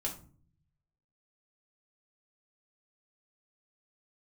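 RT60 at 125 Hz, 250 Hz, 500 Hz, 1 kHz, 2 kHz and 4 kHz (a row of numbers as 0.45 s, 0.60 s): 1.3 s, 0.85 s, 0.50 s, 0.40 s, 0.30 s, 0.25 s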